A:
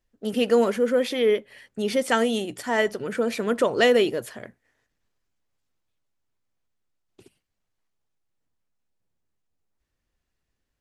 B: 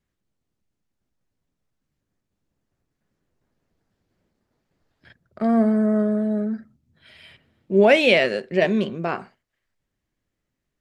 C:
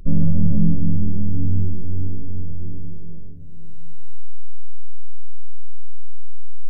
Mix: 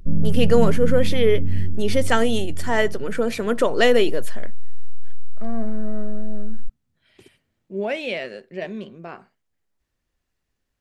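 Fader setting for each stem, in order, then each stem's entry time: +2.0, -11.0, -3.5 dB; 0.00, 0.00, 0.00 s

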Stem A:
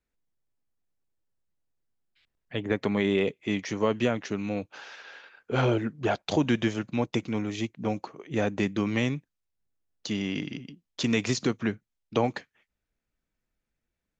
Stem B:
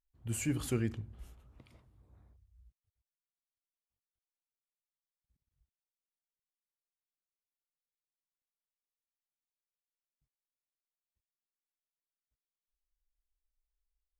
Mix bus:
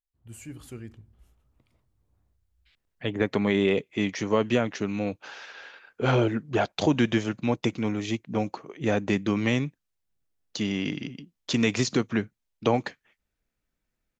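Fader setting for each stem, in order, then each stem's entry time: +2.0, -8.0 dB; 0.50, 0.00 s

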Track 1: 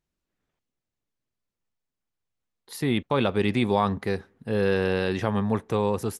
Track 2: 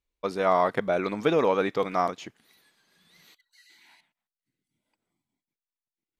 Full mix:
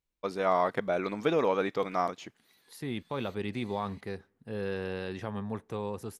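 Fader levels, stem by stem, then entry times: -11.0, -4.0 dB; 0.00, 0.00 s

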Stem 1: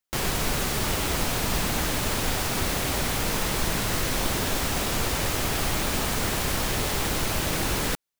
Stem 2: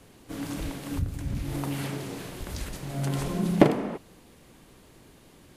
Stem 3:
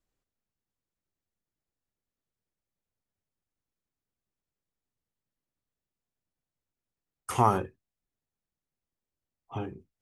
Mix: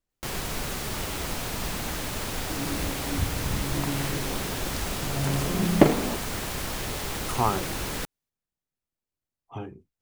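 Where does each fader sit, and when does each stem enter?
-5.5, +1.0, -1.5 dB; 0.10, 2.20, 0.00 s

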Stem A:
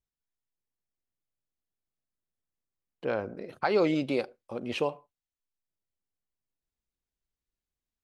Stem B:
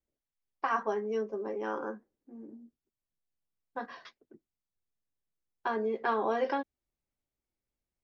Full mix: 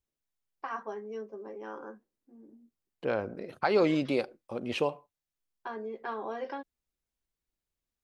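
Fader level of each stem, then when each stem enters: 0.0, -7.0 dB; 0.00, 0.00 s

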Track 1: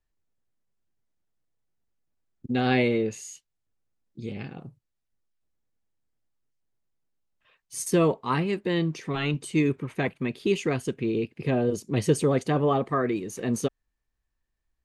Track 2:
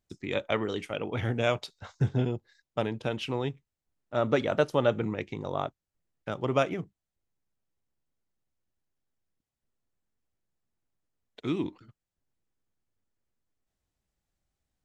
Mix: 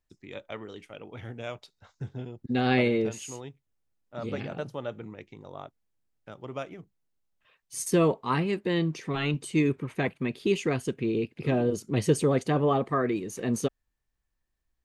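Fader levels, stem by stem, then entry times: -1.0, -10.5 dB; 0.00, 0.00 s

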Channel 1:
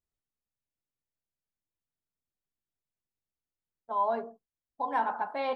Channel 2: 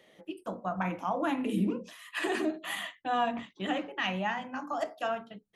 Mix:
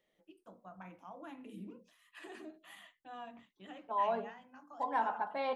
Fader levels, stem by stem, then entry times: -4.0, -19.0 dB; 0.00, 0.00 s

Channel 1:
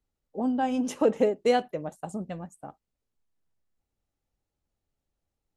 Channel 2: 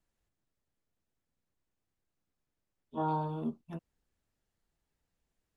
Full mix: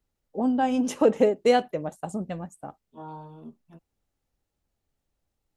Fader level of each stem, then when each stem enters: +3.0, -8.5 dB; 0.00, 0.00 s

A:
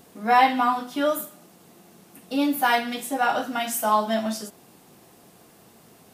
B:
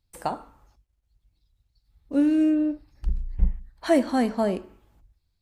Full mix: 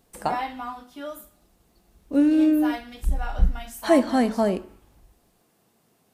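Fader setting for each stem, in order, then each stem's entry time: -12.5, +2.0 dB; 0.00, 0.00 s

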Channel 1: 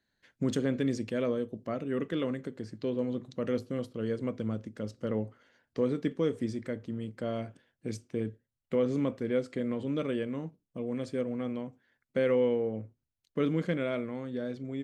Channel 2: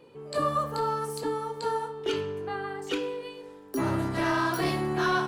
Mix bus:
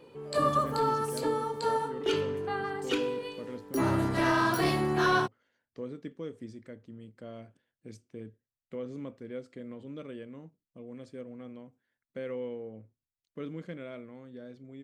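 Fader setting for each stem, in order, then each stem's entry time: -10.5, +0.5 dB; 0.00, 0.00 s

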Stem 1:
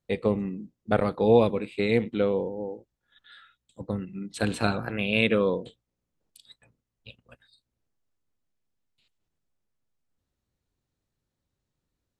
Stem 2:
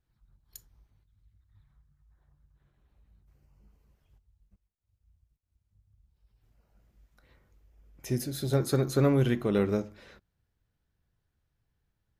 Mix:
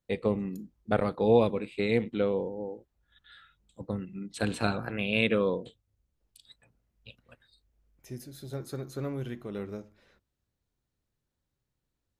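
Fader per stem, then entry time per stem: -3.0, -11.0 dB; 0.00, 0.00 s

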